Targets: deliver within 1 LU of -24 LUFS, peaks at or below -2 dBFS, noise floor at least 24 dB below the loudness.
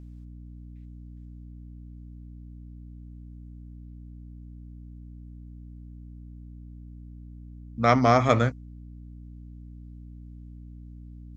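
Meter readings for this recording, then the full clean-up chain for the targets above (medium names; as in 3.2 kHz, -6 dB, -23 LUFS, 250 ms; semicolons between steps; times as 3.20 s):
hum 60 Hz; highest harmonic 300 Hz; hum level -41 dBFS; loudness -22.0 LUFS; peak level -5.0 dBFS; loudness target -24.0 LUFS
-> hum notches 60/120/180/240/300 Hz; trim -2 dB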